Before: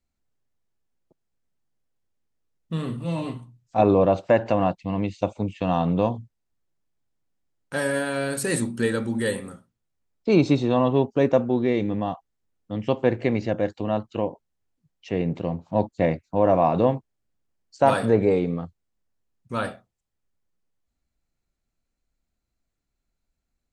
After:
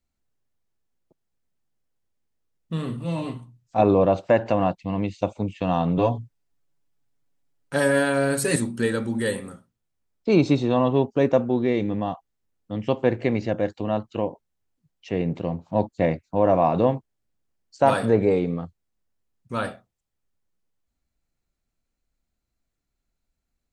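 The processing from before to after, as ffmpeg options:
ffmpeg -i in.wav -filter_complex "[0:a]asettb=1/sr,asplit=3[link_01][link_02][link_03];[link_01]atrim=end=5.974[link_04];[link_02]atrim=start=5.97:end=8.56,asetpts=PTS-STARTPTS,afade=type=in:duration=0.004:curve=qsin,afade=type=out:start_time=2.586:duration=0.004:curve=qsin,aecho=1:1:7.1:0.83,atrim=end_sample=114219[link_05];[link_03]atrim=start=8.556[link_06];[link_04][link_05]acrossfade=duration=0.004:curve1=hsin:curve2=qsin[link_07];[link_07][link_06]acrossfade=duration=0.004:curve1=qsin:curve2=hsin" out.wav

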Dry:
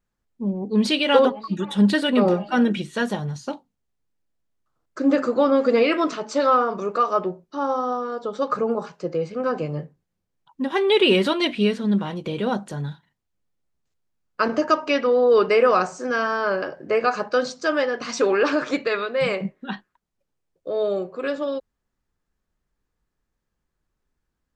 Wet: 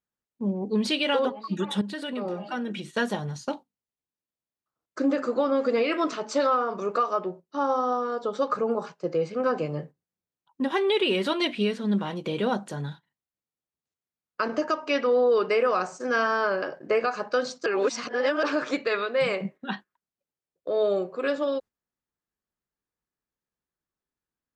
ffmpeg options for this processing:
ffmpeg -i in.wav -filter_complex "[0:a]asettb=1/sr,asplit=3[link_01][link_02][link_03];[link_01]atrim=end=1.814[link_04];[link_02]atrim=start=1.81:end=2.95,asetpts=PTS-STARTPTS,afade=type=in:duration=0.004:curve=qsin,afade=type=out:start_time=1.136:duration=0.004:curve=qsin,acompressor=threshold=-30dB:ratio=3:attack=3.2:release=140:knee=1:detection=peak[link_05];[link_03]atrim=start=2.946[link_06];[link_04][link_05]acrossfade=duration=0.004:curve1=hsin:curve2=qsin[link_07];[link_07][link_06]acrossfade=duration=0.004:curve1=qsin:curve2=hsin,asplit=3[link_08][link_09][link_10];[link_08]atrim=end=17.662[link_11];[link_09]atrim=start=17.658:end=18.432,asetpts=PTS-STARTPTS,areverse[link_12];[link_10]atrim=start=18.428[link_13];[link_11][link_12]acrossfade=duration=0.004:curve1=hsin:curve2=hsin[link_14];[link_14][link_13]acrossfade=duration=0.004:curve1=hsin:curve2=hsin,alimiter=limit=-14.5dB:level=0:latency=1:release=442,agate=range=-10dB:threshold=-39dB:ratio=16:detection=peak,highpass=frequency=180:poles=1" out.wav

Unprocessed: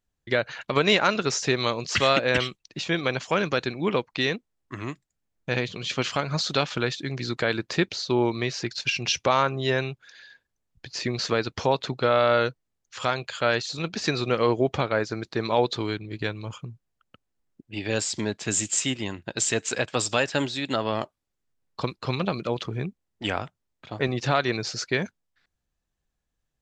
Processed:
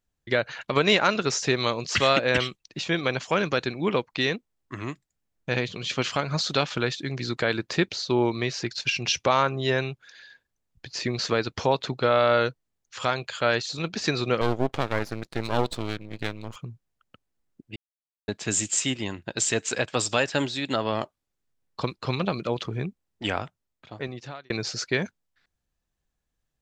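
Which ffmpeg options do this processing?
ffmpeg -i in.wav -filter_complex "[0:a]asettb=1/sr,asplit=3[link_01][link_02][link_03];[link_01]atrim=end=14.414[link_04];[link_02]atrim=start=14.41:end=16.56,asetpts=PTS-STARTPTS,afade=type=in:duration=0.004:curve=qsin,afade=type=out:start_time=2.146:duration=0.004:curve=qsin,aeval=exprs='max(val(0),0)':channel_layout=same[link_05];[link_03]atrim=start=16.556[link_06];[link_04][link_05]acrossfade=duration=0.004:curve1=hsin:curve2=qsin[link_07];[link_07][link_06]acrossfade=duration=0.004:curve1=qsin:curve2=hsin,asplit=4[link_08][link_09][link_10][link_11];[link_08]atrim=end=17.76,asetpts=PTS-STARTPTS,afade=type=out:start_time=17.756:duration=0.004:curve=hsin[link_12];[link_09]atrim=start=17.76:end=18.28,asetpts=PTS-STARTPTS,volume=0[link_13];[link_10]atrim=start=18.28:end=24.5,asetpts=PTS-STARTPTS,afade=type=in:duration=0.004:curve=hsin,afade=type=out:start_time=5.11:duration=1.11[link_14];[link_11]atrim=start=24.5,asetpts=PTS-STARTPTS,afade=type=in:duration=0.004:curve=hsin[link_15];[link_12][link_13][link_14][link_15]concat=n=4:v=0:a=1" out.wav

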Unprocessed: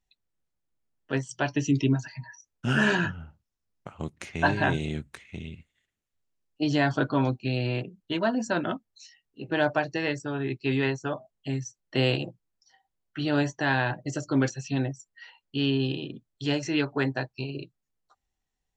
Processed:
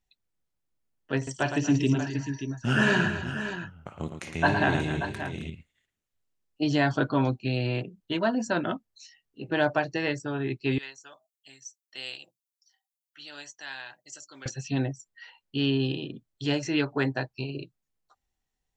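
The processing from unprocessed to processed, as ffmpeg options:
ffmpeg -i in.wav -filter_complex "[0:a]asettb=1/sr,asplit=3[link_01][link_02][link_03];[link_01]atrim=end=1.164[link_04];[link_02]atrim=start=1.16:end=5.5,asetpts=PTS-STARTPTS,afade=type=in:duration=0.004:curve=qsin,afade=type=out:start_time=4.336:duration=0.004:curve=qsin,aecho=1:1:55|111|237|266|583:0.2|0.398|0.126|0.224|0.316,atrim=end_sample=191394[link_05];[link_03]atrim=start=5.496[link_06];[link_04][link_05]acrossfade=duration=0.004:curve1=hsin:curve2=qsin[link_07];[link_07][link_06]acrossfade=duration=0.004:curve1=qsin:curve2=hsin,asettb=1/sr,asplit=3[link_08][link_09][link_10];[link_08]atrim=end=10.784[link_11];[link_09]atrim=start=10.78:end=14.46,asetpts=PTS-STARTPTS,afade=type=in:duration=0.004:curve=qsin,afade=type=out:start_time=3.676:duration=0.004:curve=qsin,aderivative[link_12];[link_10]atrim=start=14.456[link_13];[link_11][link_12]acrossfade=duration=0.004:curve1=hsin:curve2=qsin[link_14];[link_14][link_13]acrossfade=duration=0.004:curve1=qsin:curve2=hsin" out.wav

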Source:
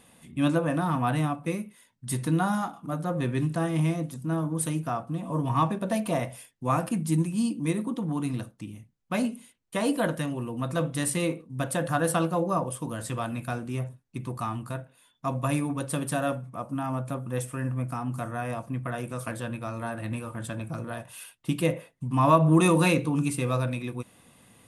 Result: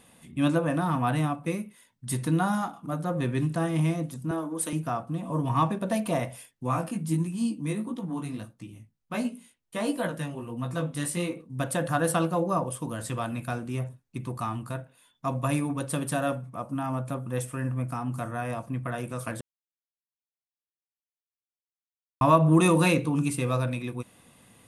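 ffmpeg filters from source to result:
ffmpeg -i in.wav -filter_complex "[0:a]asettb=1/sr,asplit=3[link_01][link_02][link_03];[link_01]atrim=end=4.314[link_04];[link_02]atrim=start=4.31:end=4.73,asetpts=PTS-STARTPTS,afade=type=in:duration=0.004:curve=qsin,afade=type=out:start_time=0.416:duration=0.004:curve=qsin,highpass=frequency=240:width=0.5412,highpass=frequency=240:width=1.3066[link_05];[link_03]atrim=start=4.726[link_06];[link_04][link_05]acrossfade=duration=0.004:curve1=hsin:curve2=qsin[link_07];[link_07][link_06]acrossfade=duration=0.004:curve1=qsin:curve2=hsin,asplit=3[link_08][link_09][link_10];[link_08]afade=type=out:start_time=6.66:duration=0.02[link_11];[link_09]flanger=delay=16:depth=4.1:speed=1.5,afade=type=in:start_time=6.66:duration=0.02,afade=type=out:start_time=11.35:duration=0.02[link_12];[link_10]afade=type=in:start_time=11.35:duration=0.02[link_13];[link_11][link_12][link_13]amix=inputs=3:normalize=0,asplit=3[link_14][link_15][link_16];[link_14]atrim=end=19.41,asetpts=PTS-STARTPTS,afade=type=out:start_time=19.406:duration=0.004:curve=hsin[link_17];[link_15]atrim=start=19.41:end=22.21,asetpts=PTS-STARTPTS,volume=0[link_18];[link_16]atrim=start=22.21,asetpts=PTS-STARTPTS,afade=type=in:duration=0.004:curve=hsin[link_19];[link_17][link_18][link_19]concat=n=3:v=0:a=1" out.wav

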